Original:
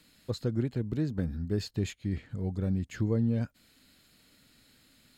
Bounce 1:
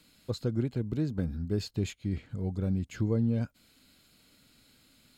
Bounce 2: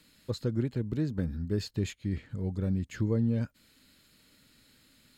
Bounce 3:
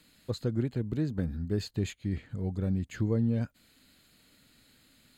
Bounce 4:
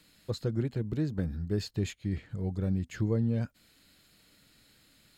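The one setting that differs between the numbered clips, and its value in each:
band-stop, frequency: 1.8 kHz, 720 Hz, 5.4 kHz, 250 Hz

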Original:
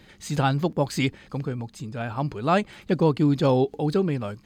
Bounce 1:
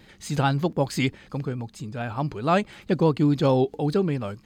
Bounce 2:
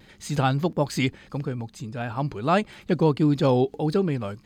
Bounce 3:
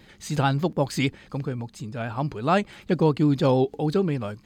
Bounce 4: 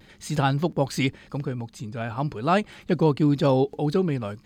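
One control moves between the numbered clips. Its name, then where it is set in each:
vibrato, rate: 4.6 Hz, 1.6 Hz, 6.8 Hz, 0.93 Hz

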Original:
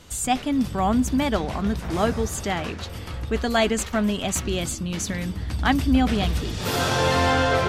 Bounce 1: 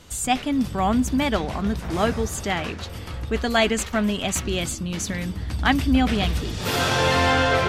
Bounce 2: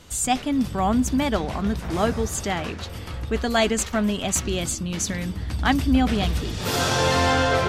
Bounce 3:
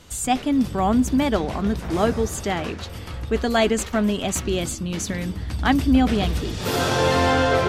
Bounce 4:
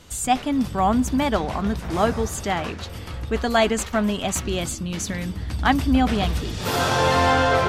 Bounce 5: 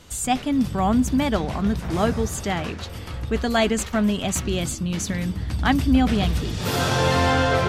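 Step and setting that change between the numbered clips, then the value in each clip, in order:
dynamic bell, frequency: 2.4 kHz, 6.3 kHz, 370 Hz, 930 Hz, 140 Hz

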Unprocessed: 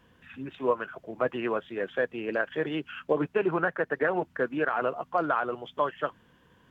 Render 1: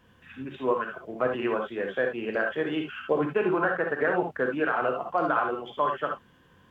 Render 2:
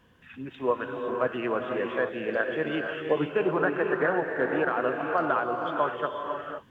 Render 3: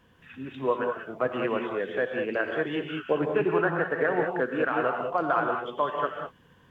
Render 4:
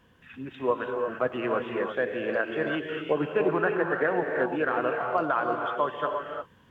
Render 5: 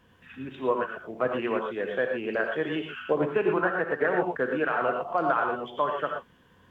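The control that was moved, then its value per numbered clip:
gated-style reverb, gate: 90 ms, 540 ms, 220 ms, 370 ms, 140 ms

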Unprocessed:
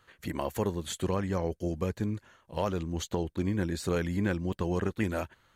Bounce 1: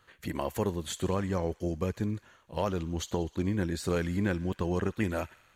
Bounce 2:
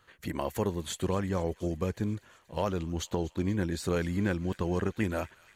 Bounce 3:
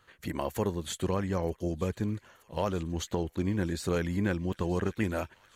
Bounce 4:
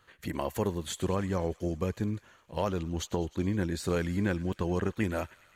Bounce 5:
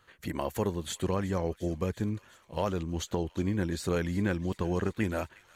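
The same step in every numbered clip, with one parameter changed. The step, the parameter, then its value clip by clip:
feedback echo behind a high-pass, time: 62 ms, 239 ms, 926 ms, 103 ms, 356 ms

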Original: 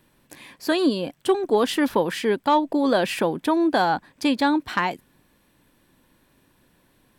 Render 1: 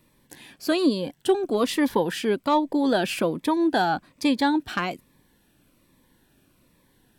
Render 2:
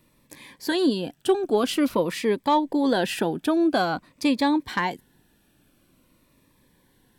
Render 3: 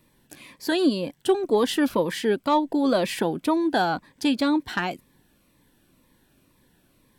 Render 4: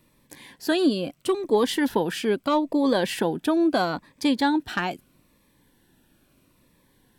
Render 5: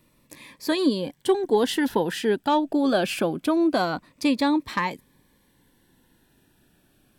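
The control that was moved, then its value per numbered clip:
Shepard-style phaser, rate: 1.2 Hz, 0.48 Hz, 2 Hz, 0.76 Hz, 0.24 Hz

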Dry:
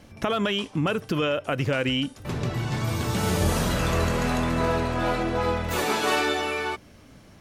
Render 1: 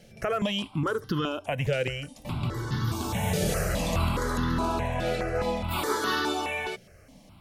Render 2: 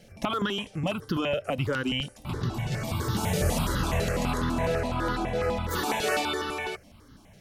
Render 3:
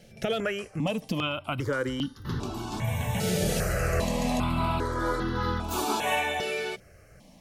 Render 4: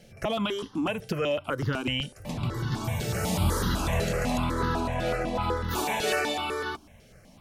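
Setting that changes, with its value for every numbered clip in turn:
stepped phaser, rate: 4.8 Hz, 12 Hz, 2.5 Hz, 8 Hz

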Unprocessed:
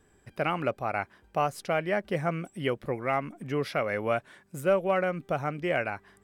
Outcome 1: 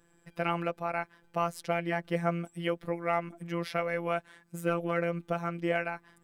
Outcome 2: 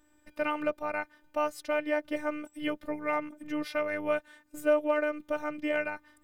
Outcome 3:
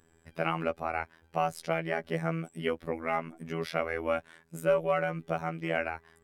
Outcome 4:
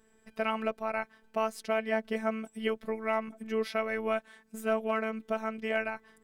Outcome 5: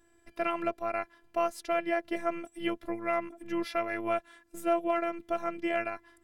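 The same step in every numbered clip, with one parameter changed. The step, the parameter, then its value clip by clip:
robot voice, frequency: 170 Hz, 300 Hz, 82 Hz, 220 Hz, 340 Hz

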